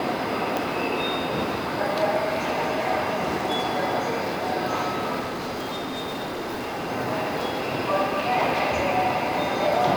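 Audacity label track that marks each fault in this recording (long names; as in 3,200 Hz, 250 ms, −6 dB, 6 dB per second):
0.570000	0.570000	click
5.190000	6.910000	clipping −26.5 dBFS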